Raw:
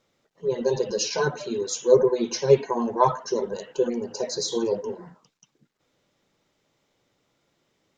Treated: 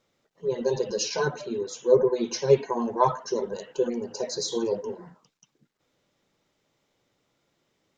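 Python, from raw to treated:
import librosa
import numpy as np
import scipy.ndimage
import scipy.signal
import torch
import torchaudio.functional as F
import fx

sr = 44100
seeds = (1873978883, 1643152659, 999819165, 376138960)

y = fx.high_shelf(x, sr, hz=3400.0, db=-10.0, at=(1.41, 2.12))
y = y * 10.0 ** (-2.0 / 20.0)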